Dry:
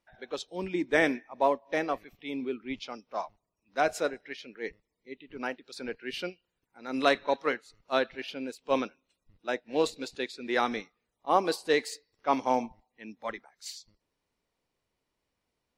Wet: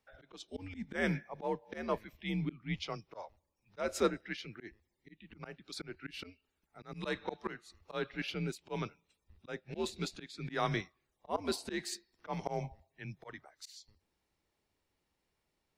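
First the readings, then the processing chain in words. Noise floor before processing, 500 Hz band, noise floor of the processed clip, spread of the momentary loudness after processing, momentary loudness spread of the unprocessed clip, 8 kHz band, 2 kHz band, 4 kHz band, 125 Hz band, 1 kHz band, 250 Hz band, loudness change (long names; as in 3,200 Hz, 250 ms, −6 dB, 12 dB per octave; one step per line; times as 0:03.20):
−84 dBFS, −9.5 dB, −83 dBFS, 17 LU, 16 LU, −3.5 dB, −9.0 dB, −6.0 dB, +8.0 dB, −11.5 dB, −6.0 dB, −8.0 dB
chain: volume swells 245 ms
frequency shifter −95 Hz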